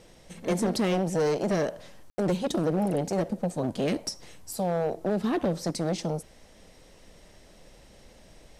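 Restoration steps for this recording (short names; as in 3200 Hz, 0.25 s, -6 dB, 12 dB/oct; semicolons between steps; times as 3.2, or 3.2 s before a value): clip repair -20.5 dBFS; room tone fill 2.1–2.18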